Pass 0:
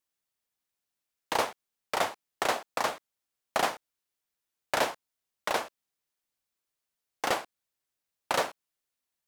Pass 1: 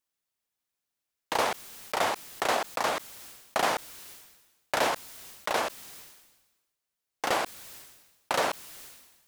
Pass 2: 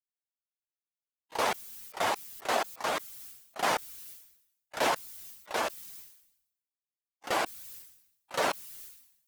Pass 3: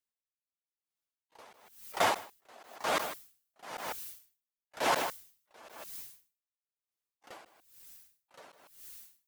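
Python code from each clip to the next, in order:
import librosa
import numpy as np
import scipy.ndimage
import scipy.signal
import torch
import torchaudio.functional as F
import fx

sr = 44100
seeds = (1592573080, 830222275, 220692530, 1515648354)

y1 = fx.sustainer(x, sr, db_per_s=50.0)
y2 = fx.bin_expand(y1, sr, power=1.5)
y2 = fx.auto_swell(y2, sr, attack_ms=194.0)
y2 = F.gain(torch.from_numpy(y2), 5.5).numpy()
y3 = y2 + 10.0 ** (-9.5 / 20.0) * np.pad(y2, (int(154 * sr / 1000.0), 0))[:len(y2)]
y3 = y3 * 10.0 ** (-31 * (0.5 - 0.5 * np.cos(2.0 * np.pi * 1.0 * np.arange(len(y3)) / sr)) / 20.0)
y3 = F.gain(torch.from_numpy(y3), 3.0).numpy()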